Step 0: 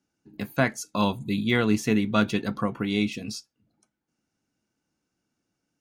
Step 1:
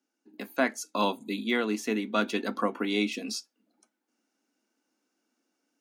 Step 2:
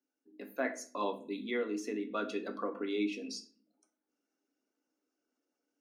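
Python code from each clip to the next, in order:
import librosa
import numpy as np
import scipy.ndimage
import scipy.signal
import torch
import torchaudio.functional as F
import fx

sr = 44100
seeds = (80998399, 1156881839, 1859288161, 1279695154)

y1 = scipy.signal.sosfilt(scipy.signal.cheby1(4, 1.0, 240.0, 'highpass', fs=sr, output='sos'), x)
y1 = fx.rider(y1, sr, range_db=10, speed_s=0.5)
y1 = y1 * librosa.db_to_amplitude(-1.0)
y2 = fx.envelope_sharpen(y1, sr, power=1.5)
y2 = fx.room_shoebox(y2, sr, seeds[0], volume_m3=38.0, walls='mixed', distance_m=0.32)
y2 = y2 * librosa.db_to_amplitude(-9.0)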